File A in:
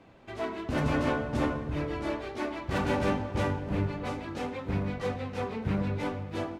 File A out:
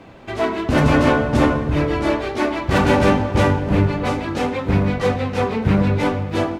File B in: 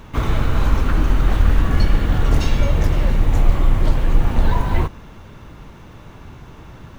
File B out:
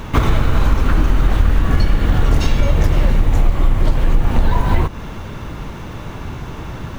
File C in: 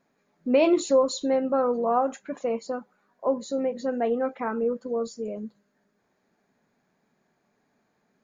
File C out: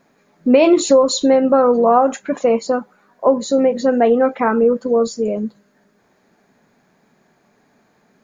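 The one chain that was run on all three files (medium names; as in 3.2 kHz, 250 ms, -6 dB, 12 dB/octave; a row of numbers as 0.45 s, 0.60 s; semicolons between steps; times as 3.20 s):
compression 4:1, threshold -21 dBFS; peak normalisation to -1.5 dBFS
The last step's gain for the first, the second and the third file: +13.5 dB, +11.0 dB, +13.0 dB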